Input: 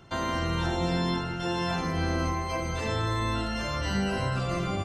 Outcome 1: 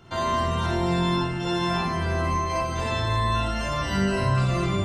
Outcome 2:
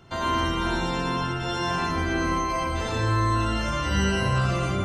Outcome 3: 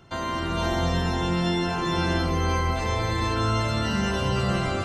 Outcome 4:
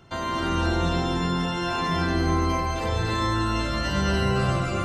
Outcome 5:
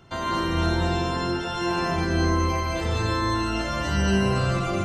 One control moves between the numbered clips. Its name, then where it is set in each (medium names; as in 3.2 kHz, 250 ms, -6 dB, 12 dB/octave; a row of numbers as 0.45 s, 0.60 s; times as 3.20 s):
gated-style reverb, gate: 80 ms, 140 ms, 530 ms, 350 ms, 230 ms